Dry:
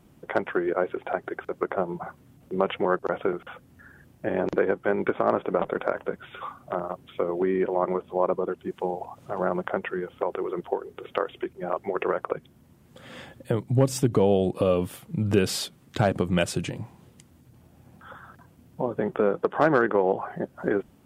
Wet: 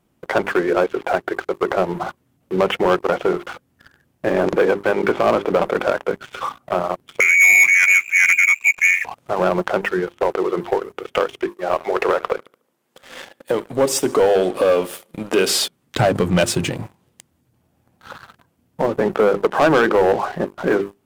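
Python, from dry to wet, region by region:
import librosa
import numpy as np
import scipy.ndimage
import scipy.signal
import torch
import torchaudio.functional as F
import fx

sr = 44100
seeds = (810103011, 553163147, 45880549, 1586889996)

y = fx.chain(x, sr, fx.low_shelf_res(hz=410.0, db=9.0, q=1.5),
    fx.freq_invert(carrier_hz=2600), at=(7.2, 9.05))
y = fx.chain(y, sr, fx.highpass(hz=340.0, slope=12),
    fx.echo_feedback(ms=73, feedback_pct=60, wet_db=-20.5), at=(11.49, 15.58))
y = fx.low_shelf(y, sr, hz=230.0, db=-4.5)
y = fx.hum_notches(y, sr, base_hz=50, count=8)
y = fx.leveller(y, sr, passes=3)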